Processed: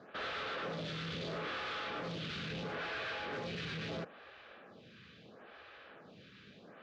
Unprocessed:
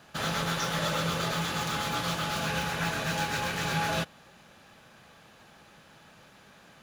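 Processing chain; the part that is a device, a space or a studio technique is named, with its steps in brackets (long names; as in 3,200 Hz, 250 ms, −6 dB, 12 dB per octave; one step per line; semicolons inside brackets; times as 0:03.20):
0:00.81–0:01.80: double-tracking delay 44 ms −2 dB
vibe pedal into a guitar amplifier (phaser with staggered stages 0.75 Hz; tube saturation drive 43 dB, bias 0.5; loudspeaker in its box 80–4,100 Hz, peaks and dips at 150 Hz −4 dB, 440 Hz +5 dB, 890 Hz −8 dB)
level +5.5 dB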